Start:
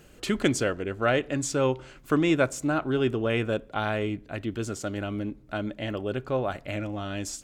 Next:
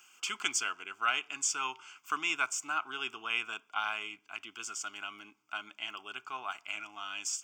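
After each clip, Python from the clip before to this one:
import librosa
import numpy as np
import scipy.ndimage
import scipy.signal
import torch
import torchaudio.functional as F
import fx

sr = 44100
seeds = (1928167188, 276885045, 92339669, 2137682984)

y = scipy.signal.sosfilt(scipy.signal.butter(2, 1200.0, 'highpass', fs=sr, output='sos'), x)
y = fx.fixed_phaser(y, sr, hz=2700.0, stages=8)
y = y * librosa.db_to_amplitude(3.0)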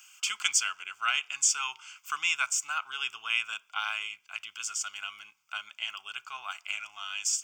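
y = fx.tone_stack(x, sr, knobs='10-0-10')
y = y * librosa.db_to_amplitude(7.5)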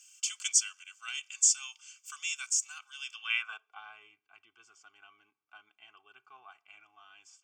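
y = x + 0.75 * np.pad(x, (int(2.6 * sr / 1000.0), 0))[:len(x)]
y = fx.filter_sweep_bandpass(y, sr, from_hz=7000.0, to_hz=260.0, start_s=3.02, end_s=3.82, q=1.4)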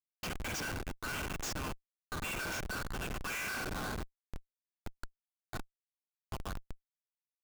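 y = fx.cabinet(x, sr, low_hz=240.0, low_slope=24, high_hz=4400.0, hz=(250.0, 390.0, 610.0, 1000.0, 1600.0, 3300.0), db=(-4, -8, 7, 9, 10, -10))
y = fx.rev_spring(y, sr, rt60_s=1.0, pass_ms=(41, 46), chirp_ms=45, drr_db=3.0)
y = fx.schmitt(y, sr, flips_db=-40.5)
y = y * librosa.db_to_amplitude(4.0)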